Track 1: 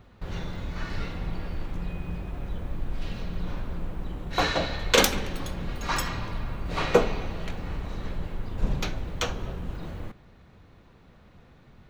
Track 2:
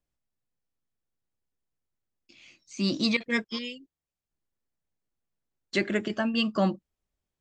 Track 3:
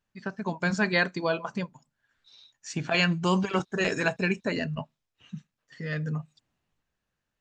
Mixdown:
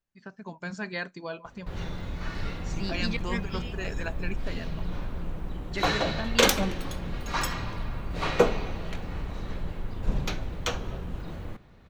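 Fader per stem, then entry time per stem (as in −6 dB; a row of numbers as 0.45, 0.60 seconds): −1.0, −7.5, −9.5 decibels; 1.45, 0.00, 0.00 seconds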